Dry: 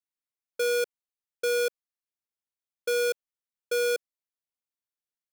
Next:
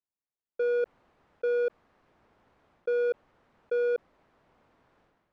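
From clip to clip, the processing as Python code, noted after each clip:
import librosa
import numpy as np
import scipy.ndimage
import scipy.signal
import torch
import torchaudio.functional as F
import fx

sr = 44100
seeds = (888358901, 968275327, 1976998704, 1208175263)

y = scipy.signal.sosfilt(scipy.signal.butter(2, 1100.0, 'lowpass', fs=sr, output='sos'), x)
y = fx.sustainer(y, sr, db_per_s=38.0)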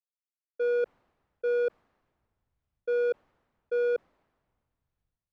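y = fx.band_widen(x, sr, depth_pct=70)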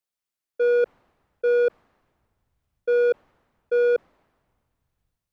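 y = fx.quant_float(x, sr, bits=8)
y = y * 10.0 ** (7.0 / 20.0)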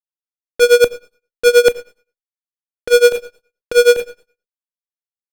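y = fx.fuzz(x, sr, gain_db=48.0, gate_db=-51.0)
y = fx.rev_schroeder(y, sr, rt60_s=0.42, comb_ms=29, drr_db=10.0)
y = y * (1.0 - 0.92 / 2.0 + 0.92 / 2.0 * np.cos(2.0 * np.pi * 9.5 * (np.arange(len(y)) / sr)))
y = y * 10.0 ** (6.0 / 20.0)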